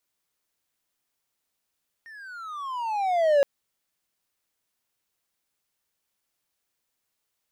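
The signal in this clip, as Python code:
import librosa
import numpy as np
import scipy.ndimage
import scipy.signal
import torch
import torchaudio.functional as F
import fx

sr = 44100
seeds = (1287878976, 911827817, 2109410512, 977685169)

y = fx.riser_tone(sr, length_s=1.37, level_db=-13, wave='triangle', hz=1850.0, rise_st=-21.0, swell_db=27.5)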